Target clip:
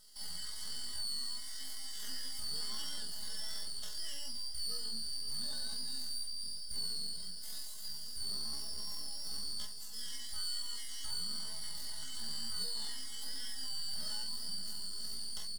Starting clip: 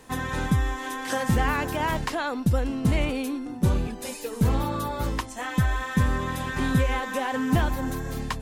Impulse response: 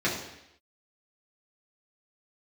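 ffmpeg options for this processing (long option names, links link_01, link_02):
-filter_complex "[0:a]afftfilt=real='real(if(lt(b,272),68*(eq(floor(b/68),0)*3+eq(floor(b/68),1)*2+eq(floor(b/68),2)*1+eq(floor(b/68),3)*0)+mod(b,68),b),0)':imag='imag(if(lt(b,272),68*(eq(floor(b/68),0)*3+eq(floor(b/68),1)*2+eq(floor(b/68),2)*1+eq(floor(b/68),3)*0)+mod(b,68),b),0)':win_size=2048:overlap=0.75,aeval=exprs='max(val(0),0)':channel_layout=same,highshelf=frequency=6300:gain=9.5,acrossover=split=2700[link_01][link_02];[link_02]acompressor=threshold=-29dB:ratio=4:attack=1:release=60[link_03];[link_01][link_03]amix=inputs=2:normalize=0,aecho=1:1:4.7:0.9,acrossover=split=180|3000[link_04][link_05][link_06];[link_04]acompressor=threshold=-29dB:ratio=10[link_07];[link_07][link_05][link_06]amix=inputs=3:normalize=0,equalizer=frequency=350:width=0.3:gain=-7,asoftclip=type=tanh:threshold=-20.5dB,flanger=delay=16.5:depth=5.9:speed=1.9,atempo=0.54,asuperstop=centerf=2400:order=4:qfactor=3.8,aecho=1:1:521|1042|1563|2084|2605|3126:0.168|0.0974|0.0565|0.0328|0.019|0.011,volume=-8dB"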